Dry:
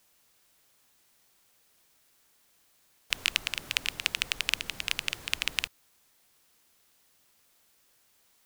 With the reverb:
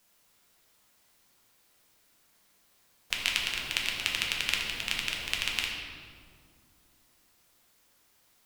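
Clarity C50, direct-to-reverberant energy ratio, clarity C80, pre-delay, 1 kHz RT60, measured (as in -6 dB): 2.0 dB, -1.5 dB, 3.5 dB, 6 ms, 1.8 s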